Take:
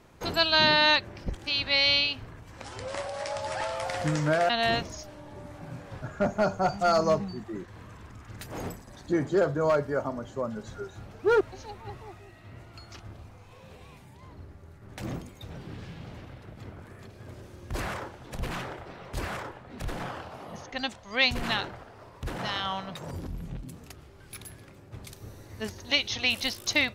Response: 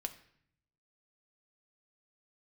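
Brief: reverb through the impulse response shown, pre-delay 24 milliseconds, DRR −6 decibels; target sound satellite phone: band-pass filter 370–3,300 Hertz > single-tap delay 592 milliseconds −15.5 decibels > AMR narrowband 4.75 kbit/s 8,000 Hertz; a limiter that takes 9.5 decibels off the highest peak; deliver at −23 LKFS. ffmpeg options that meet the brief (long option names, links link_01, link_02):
-filter_complex "[0:a]alimiter=limit=-19.5dB:level=0:latency=1,asplit=2[link_01][link_02];[1:a]atrim=start_sample=2205,adelay=24[link_03];[link_02][link_03]afir=irnorm=-1:irlink=0,volume=7dB[link_04];[link_01][link_04]amix=inputs=2:normalize=0,highpass=370,lowpass=3300,aecho=1:1:592:0.168,volume=7dB" -ar 8000 -c:a libopencore_amrnb -b:a 4750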